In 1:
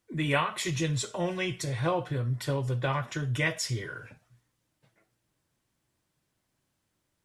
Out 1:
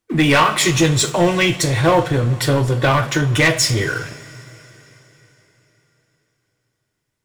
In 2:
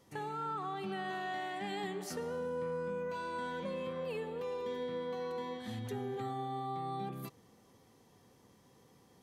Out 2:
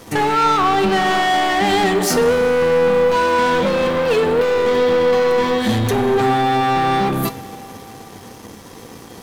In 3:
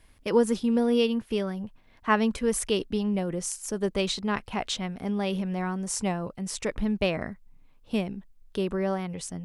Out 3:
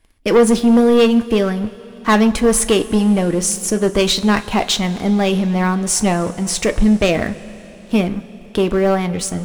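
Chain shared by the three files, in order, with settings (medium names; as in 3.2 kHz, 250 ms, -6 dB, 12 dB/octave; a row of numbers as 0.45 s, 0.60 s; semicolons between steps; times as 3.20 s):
waveshaping leveller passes 3; two-slope reverb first 0.21 s, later 4 s, from -19 dB, DRR 9 dB; normalise loudness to -16 LUFS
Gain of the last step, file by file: +5.5 dB, +16.5 dB, +3.0 dB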